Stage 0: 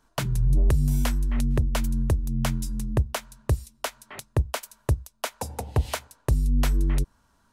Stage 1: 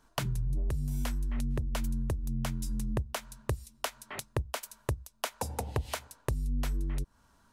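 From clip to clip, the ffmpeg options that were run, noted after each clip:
-af "acompressor=threshold=0.0355:ratio=6"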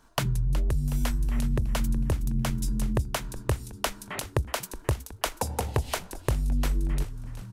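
-filter_complex "[0:a]asplit=7[s0][s1][s2][s3][s4][s5][s6];[s1]adelay=369,afreqshift=-82,volume=0.237[s7];[s2]adelay=738,afreqshift=-164,volume=0.13[s8];[s3]adelay=1107,afreqshift=-246,volume=0.0716[s9];[s4]adelay=1476,afreqshift=-328,volume=0.0394[s10];[s5]adelay=1845,afreqshift=-410,volume=0.0216[s11];[s6]adelay=2214,afreqshift=-492,volume=0.0119[s12];[s0][s7][s8][s9][s10][s11][s12]amix=inputs=7:normalize=0,volume=1.88"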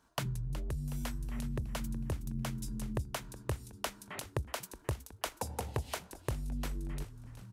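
-af "highpass=54,volume=0.376"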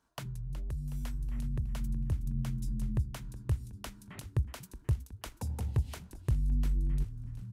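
-af "asubboost=boost=6.5:cutoff=220,volume=0.473"

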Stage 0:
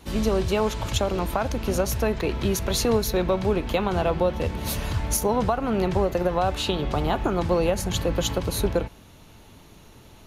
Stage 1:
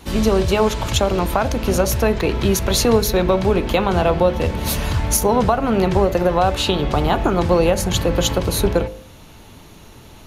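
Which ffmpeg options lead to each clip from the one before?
-af "bandreject=f=52.11:t=h:w=4,bandreject=f=104.22:t=h:w=4,bandreject=f=156.33:t=h:w=4,bandreject=f=208.44:t=h:w=4,bandreject=f=260.55:t=h:w=4,bandreject=f=312.66:t=h:w=4,bandreject=f=364.77:t=h:w=4,bandreject=f=416.88:t=h:w=4,bandreject=f=468.99:t=h:w=4,bandreject=f=521.1:t=h:w=4,bandreject=f=573.21:t=h:w=4,bandreject=f=625.32:t=h:w=4,bandreject=f=677.43:t=h:w=4,volume=2.24"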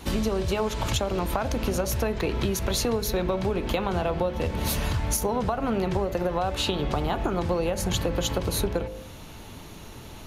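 -af "acompressor=threshold=0.0708:ratio=6"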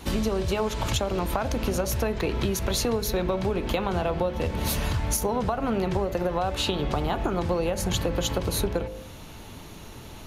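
-af anull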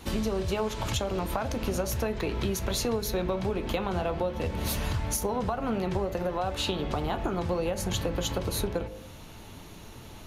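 -af "flanger=delay=8.7:depth=2:regen=-72:speed=1.4:shape=sinusoidal,volume=1.12"

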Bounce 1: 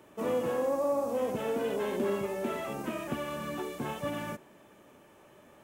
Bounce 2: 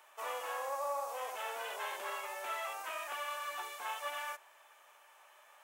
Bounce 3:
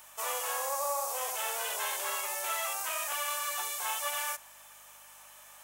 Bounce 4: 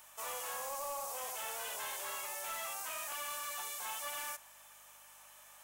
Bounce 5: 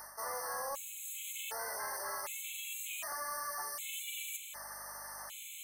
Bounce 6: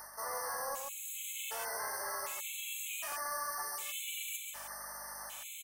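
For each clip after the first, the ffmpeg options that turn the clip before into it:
-af "highpass=f=790:w=0.5412,highpass=f=790:w=1.3066,volume=1.12"
-af "aeval=exprs='val(0)+0.000501*(sin(2*PI*50*n/s)+sin(2*PI*2*50*n/s)/2+sin(2*PI*3*50*n/s)/3+sin(2*PI*4*50*n/s)/4+sin(2*PI*5*50*n/s)/5)':c=same,bass=f=250:g=-14,treble=f=4000:g=14,volume=1.5"
-af "asoftclip=type=tanh:threshold=0.0266,volume=0.596"
-af "areverse,acompressor=threshold=0.00251:ratio=5,areverse,afftfilt=real='re*gt(sin(2*PI*0.66*pts/sr)*(1-2*mod(floor(b*sr/1024/2100),2)),0)':imag='im*gt(sin(2*PI*0.66*pts/sr)*(1-2*mod(floor(b*sr/1024/2100),2)),0)':win_size=1024:overlap=0.75,volume=5.31"
-af "aecho=1:1:135:0.531"

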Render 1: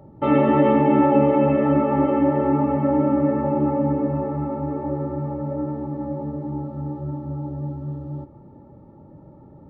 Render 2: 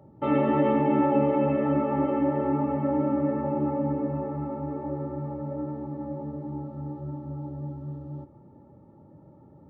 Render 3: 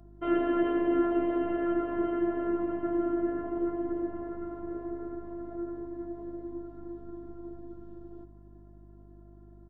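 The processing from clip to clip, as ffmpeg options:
-af "highpass=64,volume=0.501"
-af "afftfilt=real='hypot(re,im)*cos(PI*b)':imag='0':win_size=512:overlap=0.75,aeval=exprs='val(0)+0.00282*(sin(2*PI*50*n/s)+sin(2*PI*2*50*n/s)/2+sin(2*PI*3*50*n/s)/3+sin(2*PI*4*50*n/s)/4+sin(2*PI*5*50*n/s)/5)':c=same,aecho=1:1:890:0.0794"

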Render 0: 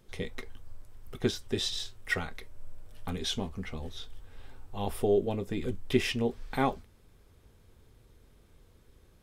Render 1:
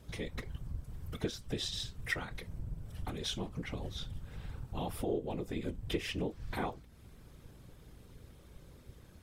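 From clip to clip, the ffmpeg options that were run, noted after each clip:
-af "acompressor=threshold=0.00794:ratio=2.5,afftfilt=real='hypot(re,im)*cos(2*PI*random(0))':imag='hypot(re,im)*sin(2*PI*random(1))':win_size=512:overlap=0.75,aeval=exprs='val(0)+0.000282*(sin(2*PI*60*n/s)+sin(2*PI*2*60*n/s)/2+sin(2*PI*3*60*n/s)/3+sin(2*PI*4*60*n/s)/4+sin(2*PI*5*60*n/s)/5)':c=same,volume=3.16"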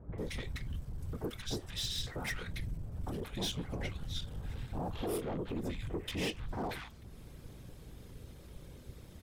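-filter_complex "[0:a]asoftclip=type=tanh:threshold=0.015,acrossover=split=1300[s0][s1];[s1]adelay=180[s2];[s0][s2]amix=inputs=2:normalize=0,volume=1.68"

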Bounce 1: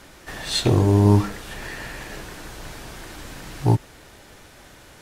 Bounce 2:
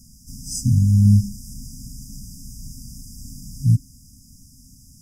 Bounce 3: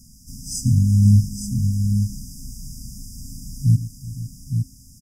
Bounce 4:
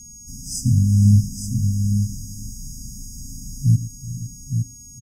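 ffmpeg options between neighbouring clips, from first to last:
-af "afftfilt=real='re*(1-between(b*sr/4096,270,4800))':imag='im*(1-between(b*sr/4096,270,4800))':win_size=4096:overlap=0.75,volume=1.41"
-af "aecho=1:1:116|375|508|864:0.178|0.119|0.168|0.473"
-af "aeval=exprs='val(0)+0.01*sin(2*PI*6600*n/s)':c=same,aecho=1:1:451:0.133"

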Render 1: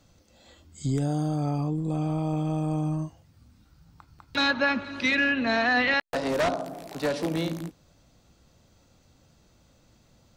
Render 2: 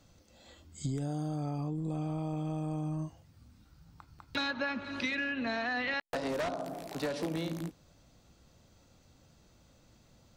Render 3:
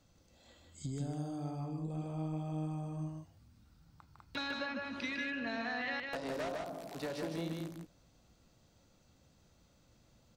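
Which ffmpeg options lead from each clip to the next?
-af "acompressor=threshold=0.0355:ratio=6,volume=0.794"
-af "aecho=1:1:154:0.668,volume=0.501"

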